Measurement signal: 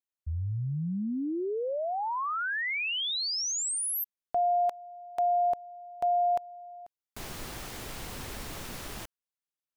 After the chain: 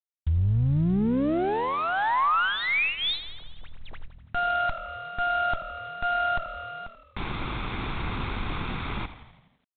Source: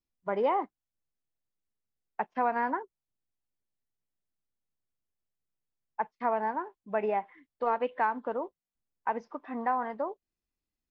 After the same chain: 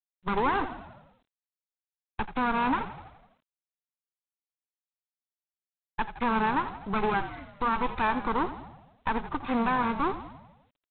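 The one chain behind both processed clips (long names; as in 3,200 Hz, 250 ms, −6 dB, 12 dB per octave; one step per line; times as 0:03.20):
lower of the sound and its delayed copy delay 0.83 ms
dynamic equaliser 3,100 Hz, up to −4 dB, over −53 dBFS, Q 2
in parallel at +2 dB: downward compressor 6 to 1, threshold −40 dBFS
on the sum: brickwall limiter −24 dBFS
on a send: echo with shifted repeats 83 ms, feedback 60%, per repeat −40 Hz, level −12.5 dB
on the sum: level +6 dB
G.726 24 kbit/s 8,000 Hz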